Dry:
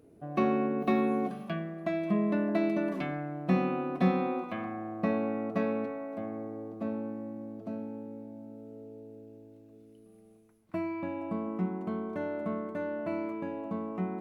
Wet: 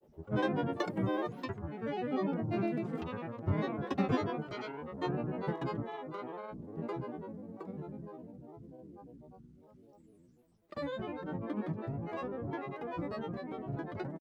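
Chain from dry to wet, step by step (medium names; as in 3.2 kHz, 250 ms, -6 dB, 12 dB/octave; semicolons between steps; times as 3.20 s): granulator, pitch spread up and down by 12 st; trim -3.5 dB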